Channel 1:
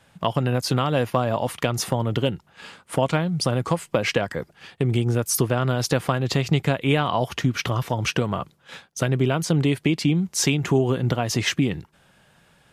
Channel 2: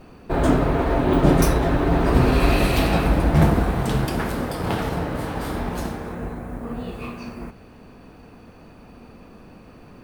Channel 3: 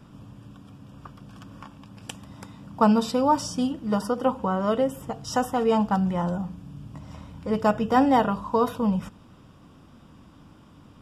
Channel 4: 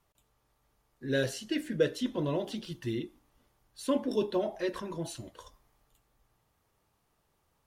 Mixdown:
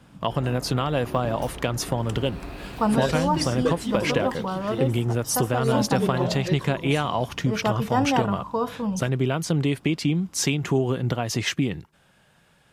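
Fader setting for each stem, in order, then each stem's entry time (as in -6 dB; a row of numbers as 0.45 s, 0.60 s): -2.5 dB, -19.5 dB, -3.5 dB, +1.5 dB; 0.00 s, 0.00 s, 0.00 s, 1.85 s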